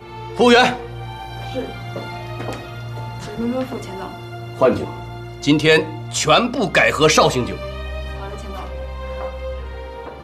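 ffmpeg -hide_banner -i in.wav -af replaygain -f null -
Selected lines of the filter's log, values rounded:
track_gain = -3.7 dB
track_peak = 0.510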